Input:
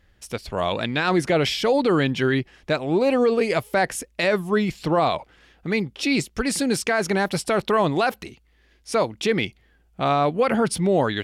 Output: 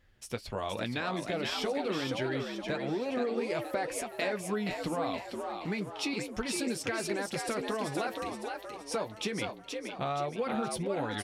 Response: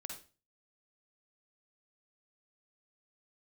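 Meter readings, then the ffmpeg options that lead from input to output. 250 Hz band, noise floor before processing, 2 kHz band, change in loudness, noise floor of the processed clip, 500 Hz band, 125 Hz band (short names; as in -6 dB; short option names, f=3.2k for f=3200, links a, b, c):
-11.5 dB, -60 dBFS, -11.5 dB, -12.0 dB, -48 dBFS, -12.0 dB, -12.5 dB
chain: -filter_complex "[0:a]acompressor=threshold=-25dB:ratio=6,asplit=2[a][b];[b]asplit=6[c][d][e][f][g][h];[c]adelay=472,afreqshift=72,volume=-5dB[i];[d]adelay=944,afreqshift=144,volume=-11.6dB[j];[e]adelay=1416,afreqshift=216,volume=-18.1dB[k];[f]adelay=1888,afreqshift=288,volume=-24.7dB[l];[g]adelay=2360,afreqshift=360,volume=-31.2dB[m];[h]adelay=2832,afreqshift=432,volume=-37.8dB[n];[i][j][k][l][m][n]amix=inputs=6:normalize=0[o];[a][o]amix=inputs=2:normalize=0,flanger=delay=8:depth=2.4:regen=-39:speed=0.28:shape=sinusoidal,volume=-2dB"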